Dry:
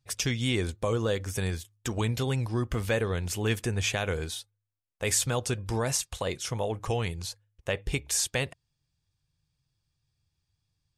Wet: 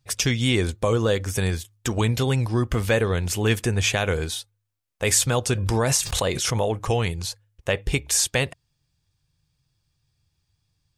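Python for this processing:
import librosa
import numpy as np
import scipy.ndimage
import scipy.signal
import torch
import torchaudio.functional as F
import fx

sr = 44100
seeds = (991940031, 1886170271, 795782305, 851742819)

y = fx.pre_swell(x, sr, db_per_s=26.0, at=(5.5, 6.81))
y = y * librosa.db_to_amplitude(6.5)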